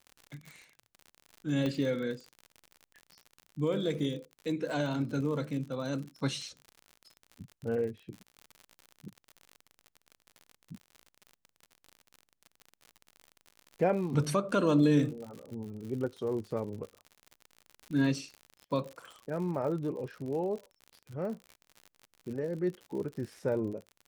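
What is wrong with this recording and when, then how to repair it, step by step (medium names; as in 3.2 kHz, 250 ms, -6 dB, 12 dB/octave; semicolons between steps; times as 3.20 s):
crackle 60 per s -39 dBFS
1.66 s: pop -21 dBFS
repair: de-click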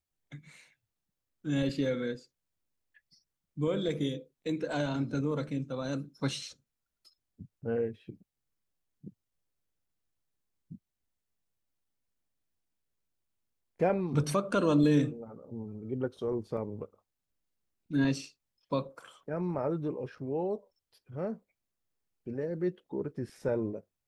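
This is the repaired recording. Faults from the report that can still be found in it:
1.66 s: pop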